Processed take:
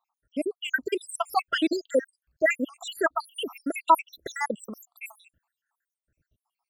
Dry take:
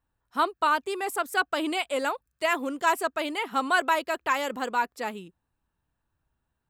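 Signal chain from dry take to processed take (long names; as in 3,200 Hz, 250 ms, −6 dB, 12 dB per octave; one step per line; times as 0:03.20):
time-frequency cells dropped at random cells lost 85%
high-shelf EQ 7,500 Hz −2 dB, from 0:02.03 −8 dB, from 0:03.24 +2.5 dB
level +8 dB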